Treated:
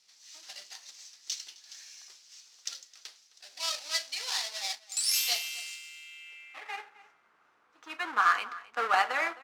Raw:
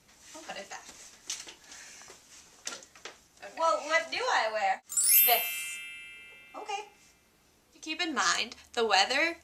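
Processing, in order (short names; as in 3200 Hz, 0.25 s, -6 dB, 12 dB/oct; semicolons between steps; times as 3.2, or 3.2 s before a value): half-waves squared off; band-pass sweep 4900 Hz -> 1300 Hz, 5.84–6.99; outdoor echo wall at 45 m, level -18 dB; gain +3 dB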